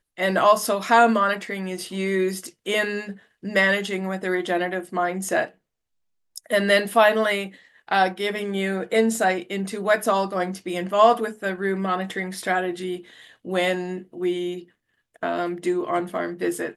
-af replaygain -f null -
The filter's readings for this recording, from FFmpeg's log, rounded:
track_gain = +1.7 dB
track_peak = 0.431